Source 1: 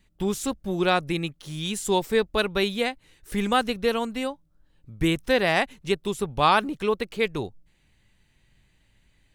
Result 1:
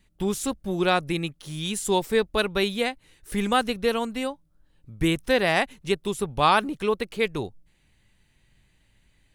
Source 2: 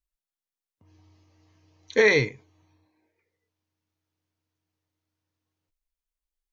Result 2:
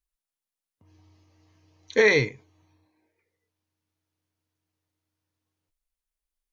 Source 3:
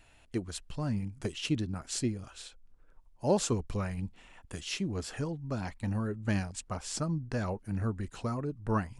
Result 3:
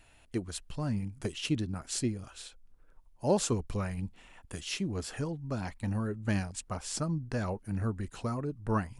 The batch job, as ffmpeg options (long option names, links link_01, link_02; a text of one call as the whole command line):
ffmpeg -i in.wav -af "equalizer=frequency=10000:width_type=o:width=0.31:gain=4.5" out.wav